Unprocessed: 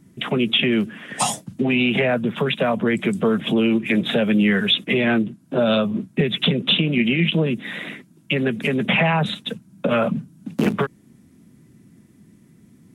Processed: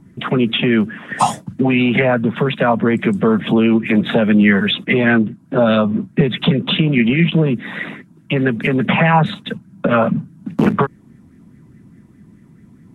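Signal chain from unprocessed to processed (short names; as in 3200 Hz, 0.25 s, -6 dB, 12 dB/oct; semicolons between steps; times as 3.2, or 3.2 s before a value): tilt -2 dB/oct; LFO bell 4.8 Hz 890–1900 Hz +11 dB; gain +1 dB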